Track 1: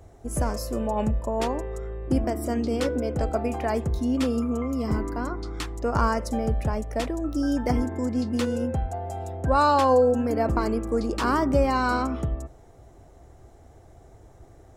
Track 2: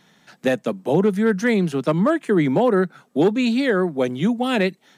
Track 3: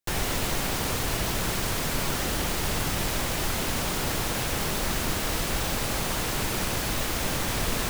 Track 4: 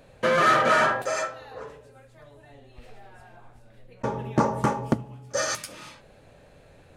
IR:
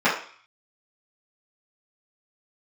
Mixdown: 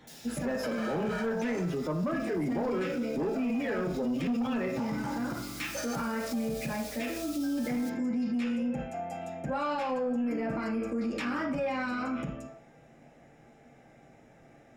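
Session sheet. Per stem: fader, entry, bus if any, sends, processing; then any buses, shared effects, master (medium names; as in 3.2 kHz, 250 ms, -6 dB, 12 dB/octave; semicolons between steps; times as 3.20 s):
-13.0 dB, 0.00 s, send -3.5 dB, fifteen-band graphic EQ 400 Hz -7 dB, 1 kHz -12 dB, 2.5 kHz +8 dB
-5.5 dB, 0.00 s, send -18.5 dB, spectral gate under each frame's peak -20 dB strong
-12.0 dB, 0.00 s, send -13.5 dB, inverse Chebyshev high-pass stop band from 850 Hz, stop band 70 dB; auto duck -19 dB, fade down 0.25 s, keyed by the second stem
-11.0 dB, 0.40 s, no send, comb 1.3 ms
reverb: on, RT60 0.50 s, pre-delay 3 ms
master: saturation -14.5 dBFS, distortion -16 dB; peak limiter -25.5 dBFS, peak gain reduction 11 dB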